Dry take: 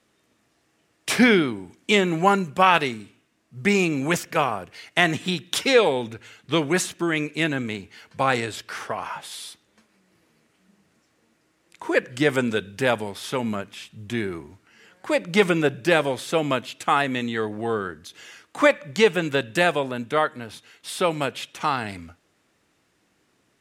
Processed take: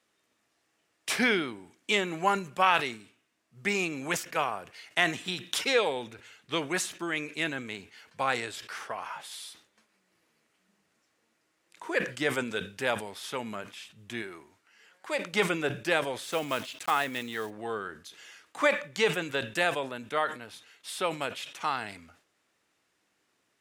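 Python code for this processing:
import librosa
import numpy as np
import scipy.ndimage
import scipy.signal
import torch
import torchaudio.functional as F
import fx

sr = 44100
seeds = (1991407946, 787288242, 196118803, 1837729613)

y = fx.low_shelf(x, sr, hz=280.0, db=-9.0, at=(14.22, 15.33))
y = fx.block_float(y, sr, bits=5, at=(16.22, 17.49), fade=0.02)
y = fx.low_shelf(y, sr, hz=350.0, db=-10.5)
y = fx.sustainer(y, sr, db_per_s=140.0)
y = y * 10.0 ** (-5.5 / 20.0)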